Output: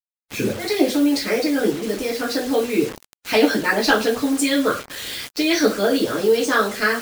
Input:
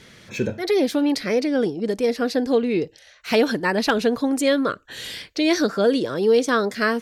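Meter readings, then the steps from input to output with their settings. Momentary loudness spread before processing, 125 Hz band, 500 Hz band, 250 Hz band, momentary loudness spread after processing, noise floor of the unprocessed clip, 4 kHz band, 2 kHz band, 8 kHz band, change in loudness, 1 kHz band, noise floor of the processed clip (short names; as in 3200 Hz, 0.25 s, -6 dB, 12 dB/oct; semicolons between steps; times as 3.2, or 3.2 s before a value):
10 LU, -0.5 dB, 0.0 dB, +1.5 dB, 9 LU, -51 dBFS, +4.0 dB, +4.5 dB, +6.5 dB, +1.5 dB, +2.5 dB, under -85 dBFS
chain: two-slope reverb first 0.32 s, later 1.6 s, from -25 dB, DRR -5 dB; bit-crush 5-bit; harmonic-percussive split harmonic -8 dB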